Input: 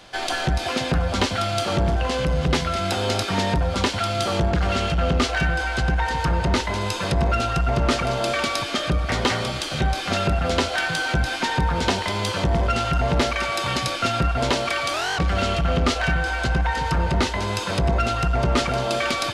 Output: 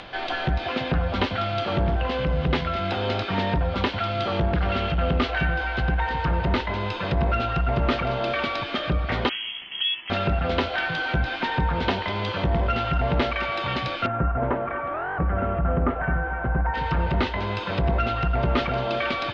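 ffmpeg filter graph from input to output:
ffmpeg -i in.wav -filter_complex "[0:a]asettb=1/sr,asplit=3[link_01][link_02][link_03];[link_01]atrim=end=9.294[link_04];[link_02]atrim=start=9.29:end=10.1,asetpts=PTS-STARTPTS,afade=type=in:duration=0.004:curve=qsin,afade=type=out:start_time=0.806:duration=0.004:curve=qsin,equalizer=frequency=2600:width=0.72:gain=-14,aeval=exprs='sgn(val(0))*max(abs(val(0))-0.00708,0)':channel_layout=same,lowpass=frequency=2900:width_type=q:width=0.5098,lowpass=frequency=2900:width_type=q:width=0.6013,lowpass=frequency=2900:width_type=q:width=0.9,lowpass=frequency=2900:width_type=q:width=2.563,afreqshift=-3400[link_05];[link_03]atrim=start=10.096[link_06];[link_04][link_05]acrossfade=duration=0.004:curve1=hsin:curve2=qsin[link_07];[link_07][link_06]acrossfade=duration=0.004:curve1=qsin:curve2=hsin,asettb=1/sr,asplit=3[link_08][link_09][link_10];[link_08]atrim=end=14.064[link_11];[link_09]atrim=start=14.06:end=16.74,asetpts=PTS-STARTPTS,afade=type=in:duration=0.004:curve=qsin,afade=type=out:start_time=2.676:duration=0.004:curve=qsin,lowpass=frequency=1600:width=0.5412,lowpass=frequency=1600:width=1.3066,aecho=1:1:239:0.158,atrim=end_sample=118188[link_12];[link_10]atrim=start=16.736[link_13];[link_11][link_12]acrossfade=duration=0.004:curve1=hsin:curve2=qsin[link_14];[link_14][link_13]acrossfade=duration=0.004:curve1=qsin:curve2=hsin,lowpass=frequency=3600:width=0.5412,lowpass=frequency=3600:width=1.3066,acompressor=mode=upward:threshold=-31dB:ratio=2.5,volume=-2dB" out.wav

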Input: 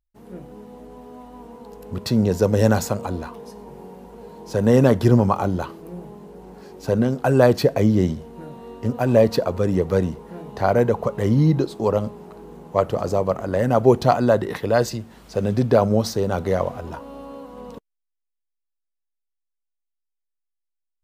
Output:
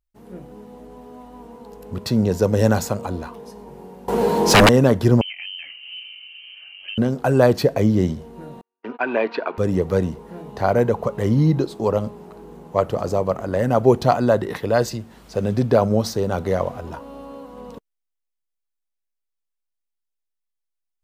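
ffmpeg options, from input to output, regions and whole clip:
ffmpeg -i in.wav -filter_complex "[0:a]asettb=1/sr,asplit=3[link_01][link_02][link_03];[link_01]atrim=end=4.084[link_04];[link_02]atrim=start=4.08:end=4.69,asetpts=PTS-STARTPTS,afade=type=in:duration=0.004:curve=qsin,afade=type=out:start_time=0.606:duration=0.004:curve=qsin,highpass=frequency=160:poles=1,aeval=exprs='0.447*sin(PI/2*8.91*val(0)/0.447)':channel_layout=same[link_05];[link_03]atrim=start=4.686[link_06];[link_04][link_05]acrossfade=duration=0.004:curve1=hsin:curve2=qsin[link_07];[link_07][link_06]acrossfade=duration=0.004:curve1=qsin:curve2=hsin,asettb=1/sr,asplit=3[link_08][link_09][link_10];[link_08]atrim=end=5.214[link_11];[link_09]atrim=start=5.21:end=6.98,asetpts=PTS-STARTPTS,afade=type=in:duration=0.004:curve=qsin,afade=type=out:start_time=1.766:duration=0.004:curve=qsin,equalizer=frequency=1700:width=0.87:gain=-5,acompressor=threshold=-31dB:ratio=4:attack=3.2:release=140:knee=1:detection=peak,lowpass=frequency=2700:width_type=q:width=0.5098,lowpass=frequency=2700:width_type=q:width=0.6013,lowpass=frequency=2700:width_type=q:width=0.9,lowpass=frequency=2700:width_type=q:width=2.563,afreqshift=-3200[link_12];[link_10]atrim=start=6.976[link_13];[link_11][link_12]acrossfade=duration=0.004:curve1=hsin:curve2=qsin[link_14];[link_14][link_13]acrossfade=duration=0.004:curve1=qsin:curve2=hsin,asettb=1/sr,asplit=3[link_15][link_16][link_17];[link_15]atrim=end=8.614[link_18];[link_16]atrim=start=8.61:end=9.58,asetpts=PTS-STARTPTS,afade=type=in:duration=0.004:curve=qsin,afade=type=out:start_time=0.966:duration=0.004:curve=qsin,agate=range=-46dB:threshold=-31dB:ratio=16:release=100:detection=peak,highpass=frequency=300:width=0.5412,highpass=frequency=300:width=1.3066,equalizer=frequency=530:width_type=q:width=4:gain=-10,equalizer=frequency=950:width_type=q:width=4:gain=4,equalizer=frequency=1500:width_type=q:width=4:gain=9,equalizer=frequency=2400:width_type=q:width=4:gain=9,lowpass=frequency=3600:width=0.5412,lowpass=frequency=3600:width=1.3066[link_19];[link_17]atrim=start=9.576[link_20];[link_18][link_19]acrossfade=duration=0.004:curve1=hsin:curve2=qsin[link_21];[link_21][link_20]acrossfade=duration=0.004:curve1=qsin:curve2=hsin" out.wav

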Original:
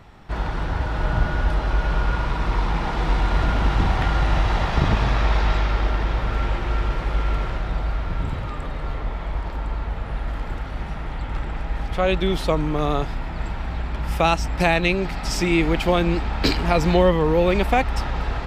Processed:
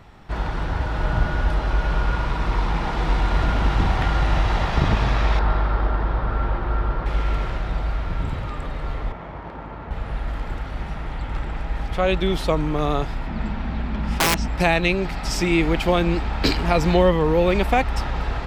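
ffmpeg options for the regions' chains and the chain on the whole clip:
ffmpeg -i in.wav -filter_complex "[0:a]asettb=1/sr,asplit=3[link_01][link_02][link_03];[link_01]atrim=end=5.394[link_04];[link_02]atrim=start=5.39:end=7.06,asetpts=PTS-STARTPTS,afade=type=in:duration=0.004:curve=qsin,afade=type=out:start_time=1.666:duration=0.004:curve=qsin,lowpass=frequency=4900:width=0.5412,lowpass=frequency=4900:width=1.3066,highshelf=frequency=1800:width_type=q:width=1.5:gain=-7[link_05];[link_03]atrim=start=7.056[link_06];[link_04][link_05]acrossfade=duration=0.004:curve1=hsin:curve2=qsin[link_07];[link_07][link_06]acrossfade=duration=0.004:curve1=qsin:curve2=hsin,asettb=1/sr,asplit=3[link_08][link_09][link_10];[link_08]atrim=end=9.124[link_11];[link_09]atrim=start=9.12:end=9.91,asetpts=PTS-STARTPTS,afade=type=in:duration=0.004:curve=qsin,afade=type=out:start_time=0.786:duration=0.004:curve=qsin,highpass=110,adynamicsmooth=sensitivity=2:basefreq=2100[link_12];[link_10]atrim=start=9.906[link_13];[link_11][link_12]acrossfade=duration=0.004:curve1=hsin:curve2=qsin[link_14];[link_14][link_13]acrossfade=duration=0.004:curve1=qsin:curve2=hsin,asettb=1/sr,asplit=3[link_15][link_16][link_17];[link_15]atrim=end=13.274[link_18];[link_16]atrim=start=13.27:end=14.48,asetpts=PTS-STARTPTS,afade=type=in:duration=0.004:curve=qsin,afade=type=out:start_time=1.206:duration=0.004:curve=qsin,lowpass=5600,equalizer=frequency=220:width_type=o:width=0.39:gain=14.5,aeval=exprs='(mod(3.55*val(0)+1,2)-1)/3.55':channel_layout=same[link_19];[link_17]atrim=start=14.476[link_20];[link_18][link_19]acrossfade=duration=0.004:curve1=hsin:curve2=qsin[link_21];[link_21][link_20]acrossfade=duration=0.004:curve1=qsin:curve2=hsin" out.wav

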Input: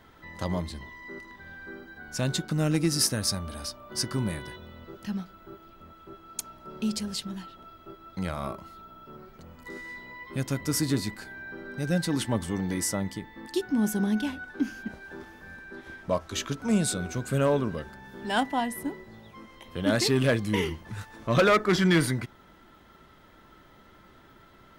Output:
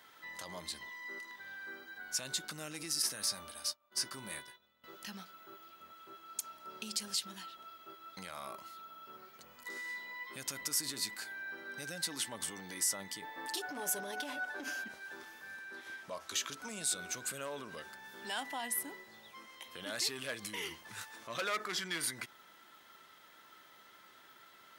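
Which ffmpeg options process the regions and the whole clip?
ffmpeg -i in.wav -filter_complex "[0:a]asettb=1/sr,asplit=3[link_01][link_02][link_03];[link_01]atrim=end=3.024[link_04];[link_02]atrim=start=3.02:end=4.84,asetpts=PTS-STARTPTS,afade=type=in:duration=0.004:curve=qsin,afade=type=out:start_time=1.816:duration=0.004:curve=qsin,agate=range=-33dB:threshold=-34dB:ratio=3:release=100:detection=peak,acrossover=split=3200[link_05][link_06];[link_06]acompressor=threshold=-33dB:ratio=4:attack=1:release=60[link_07];[link_05][link_07]amix=inputs=2:normalize=0,asplit=2[link_08][link_09];[link_09]adelay=15,volume=-12dB[link_10];[link_08][link_10]amix=inputs=2:normalize=0,atrim=end_sample=80262[link_11];[link_03]atrim=start=4.836[link_12];[link_04][link_11]acrossfade=duration=0.004:curve1=hsin:curve2=qsin[link_13];[link_13][link_12]acrossfade=duration=0.004:curve1=qsin:curve2=hsin,asettb=1/sr,asplit=3[link_14][link_15][link_16];[link_14]atrim=end=13.224[link_17];[link_15]atrim=start=13.22:end=14.84,asetpts=PTS-STARTPTS,afade=type=in:duration=0.004:curve=qsin,afade=type=out:start_time=1.616:duration=0.004:curve=qsin,equalizer=frequency=610:width_type=o:width=0.97:gain=13,aecho=1:1:6.9:0.84,atrim=end_sample=71442,aeval=exprs='clip(val(0),-1,0.112)':channel_layout=same[link_18];[link_16]atrim=start=14.836[link_19];[link_17][link_18]acrossfade=duration=0.004:curve1=hsin:curve2=qsin[link_20];[link_20][link_19]acrossfade=duration=0.004:curve1=qsin:curve2=hsin,alimiter=level_in=1.5dB:limit=-24dB:level=0:latency=1:release=47,volume=-1.5dB,highpass=frequency=1400:poles=1,highshelf=frequency=4600:gain=6" out.wav

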